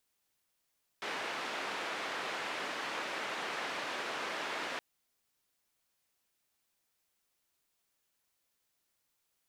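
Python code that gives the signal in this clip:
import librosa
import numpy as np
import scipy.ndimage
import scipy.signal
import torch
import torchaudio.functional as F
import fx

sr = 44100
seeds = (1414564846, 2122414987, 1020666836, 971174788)

y = fx.band_noise(sr, seeds[0], length_s=3.77, low_hz=330.0, high_hz=2200.0, level_db=-38.5)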